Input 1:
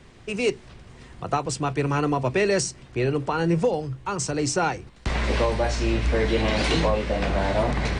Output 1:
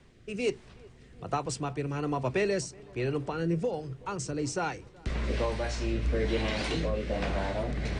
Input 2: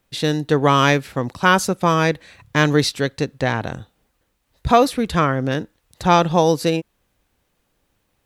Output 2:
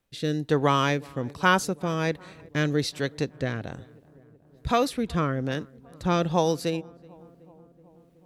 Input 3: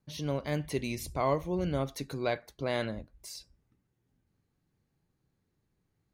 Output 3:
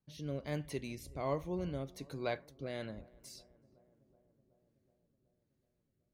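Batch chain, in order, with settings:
rotating-speaker cabinet horn 1.2 Hz
feedback echo with a low-pass in the loop 374 ms, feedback 74%, low-pass 1,400 Hz, level −24 dB
level −5.5 dB

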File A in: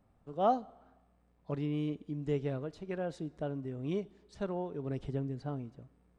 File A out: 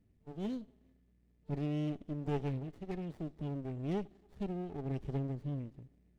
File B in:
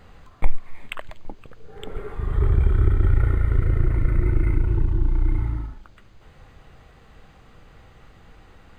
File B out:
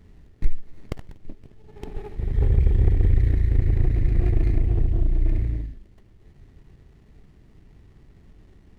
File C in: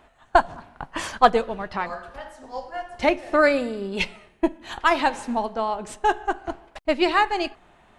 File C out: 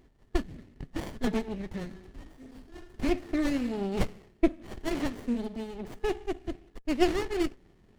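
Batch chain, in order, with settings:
brick-wall band-stop 450–1,700 Hz
windowed peak hold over 33 samples

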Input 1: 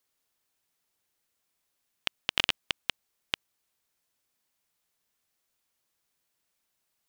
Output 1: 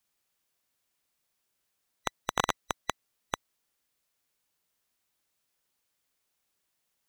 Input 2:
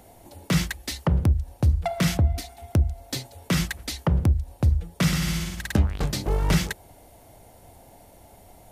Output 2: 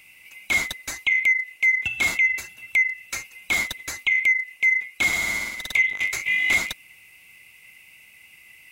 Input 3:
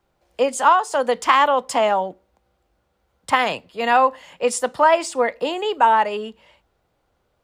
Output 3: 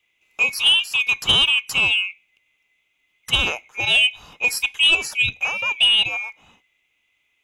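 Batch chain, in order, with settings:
neighbouring bands swapped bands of 2,000 Hz
soft clipping −7.5 dBFS

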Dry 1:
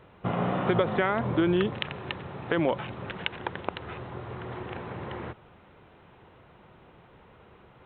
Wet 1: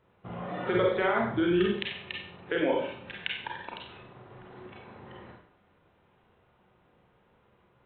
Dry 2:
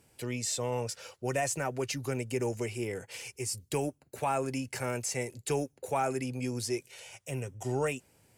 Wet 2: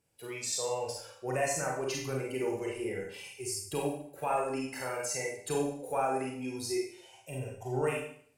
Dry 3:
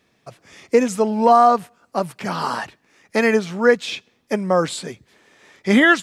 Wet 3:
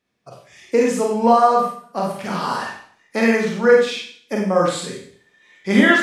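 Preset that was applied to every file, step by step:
noise reduction from a noise print of the clip's start 11 dB
four-comb reverb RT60 0.56 s, combs from 31 ms, DRR −2 dB
level −3.5 dB

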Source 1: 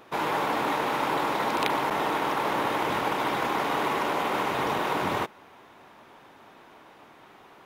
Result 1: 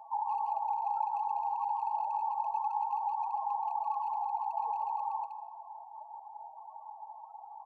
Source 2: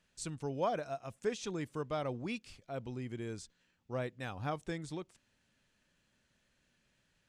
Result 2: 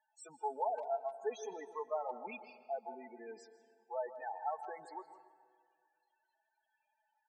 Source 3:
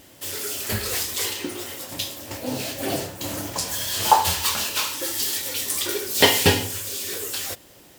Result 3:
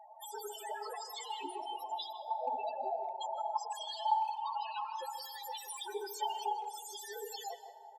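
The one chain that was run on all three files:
high-pass filter 500 Hz 12 dB per octave
soft clipping −14 dBFS
parametric band 830 Hz +14.5 dB 0.48 octaves
downward compressor 8 to 1, threshold −29 dBFS
comb filter 4.6 ms, depth 42%
spectral peaks only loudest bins 8
far-end echo of a speakerphone 160 ms, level −12 dB
dense smooth reverb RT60 1.9 s, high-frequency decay 0.55×, pre-delay 115 ms, DRR 14.5 dB
level −2 dB

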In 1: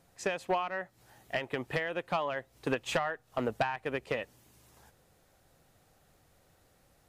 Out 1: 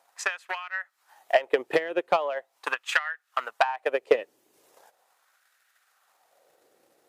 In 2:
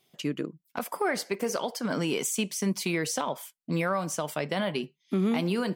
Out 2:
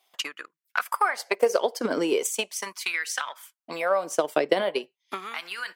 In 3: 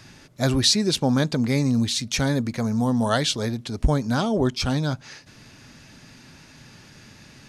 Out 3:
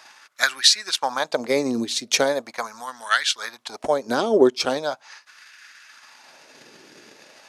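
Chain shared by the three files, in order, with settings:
transient designer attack +9 dB, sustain −5 dB
auto-filter high-pass sine 0.4 Hz 360–1,600 Hz

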